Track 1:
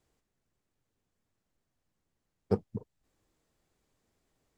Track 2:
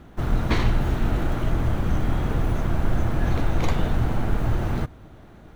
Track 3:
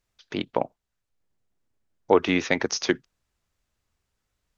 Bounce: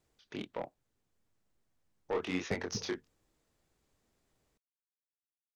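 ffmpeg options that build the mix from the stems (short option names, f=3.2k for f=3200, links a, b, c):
-filter_complex "[0:a]bandreject=f=90.37:t=h:w=4,bandreject=f=180.74:t=h:w=4,bandreject=f=271.11:t=h:w=4,bandreject=f=361.48:t=h:w=4,bandreject=f=451.85:t=h:w=4,bandreject=f=542.22:t=h:w=4,bandreject=f=632.59:t=h:w=4,bandreject=f=722.96:t=h:w=4,bandreject=f=813.33:t=h:w=4,bandreject=f=903.7:t=h:w=4,bandreject=f=994.07:t=h:w=4,bandreject=f=1.08444k:t=h:w=4,bandreject=f=1.17481k:t=h:w=4,bandreject=f=1.26518k:t=h:w=4,bandreject=f=1.35555k:t=h:w=4,bandreject=f=1.44592k:t=h:w=4,bandreject=f=1.53629k:t=h:w=4,bandreject=f=1.62666k:t=h:w=4,bandreject=f=1.71703k:t=h:w=4,bandreject=f=1.8074k:t=h:w=4,bandreject=f=1.89777k:t=h:w=4,bandreject=f=1.98814k:t=h:w=4,bandreject=f=2.07851k:t=h:w=4,bandreject=f=2.16888k:t=h:w=4,bandreject=f=2.25925k:t=h:w=4,bandreject=f=2.34962k:t=h:w=4,bandreject=f=2.43999k:t=h:w=4,bandreject=f=2.53036k:t=h:w=4,bandreject=f=2.62073k:t=h:w=4,bandreject=f=2.7111k:t=h:w=4,bandreject=f=2.80147k:t=h:w=4,bandreject=f=2.89184k:t=h:w=4,bandreject=f=2.98221k:t=h:w=4,bandreject=f=3.07258k:t=h:w=4,bandreject=f=3.16295k:t=h:w=4,bandreject=f=3.25332k:t=h:w=4,bandreject=f=3.34369k:t=h:w=4,acompressor=threshold=-34dB:ratio=6,volume=0dB[a];[2:a]asoftclip=type=tanh:threshold=-16dB,flanger=delay=20:depth=7.8:speed=1.2,volume=-7.5dB[b];[a][b]amix=inputs=2:normalize=0"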